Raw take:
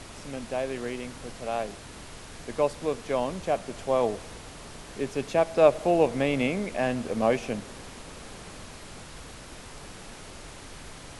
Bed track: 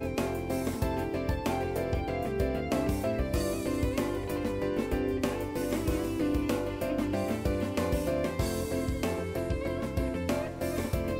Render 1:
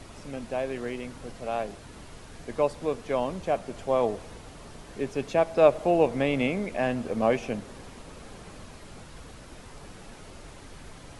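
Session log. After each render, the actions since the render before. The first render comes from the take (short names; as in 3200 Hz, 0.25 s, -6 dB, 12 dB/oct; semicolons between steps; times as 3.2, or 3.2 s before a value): denoiser 6 dB, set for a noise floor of -45 dBFS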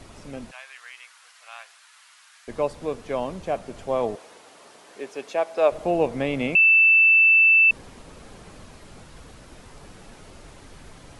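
0.51–2.48 HPF 1200 Hz 24 dB/oct; 4.15–5.72 HPF 430 Hz; 6.55–7.71 bleep 2650 Hz -12 dBFS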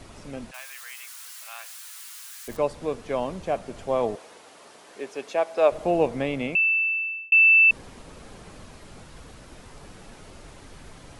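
0.54–2.57 switching spikes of -36 dBFS; 6.03–7.32 fade out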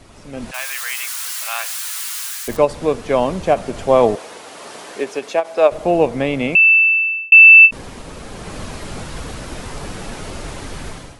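AGC gain up to 16 dB; ending taper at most 380 dB/s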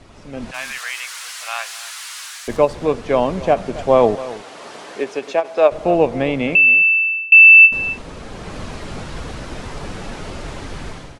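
air absorption 58 m; echo 0.269 s -16.5 dB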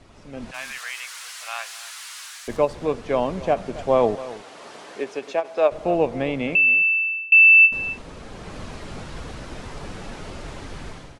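gain -5.5 dB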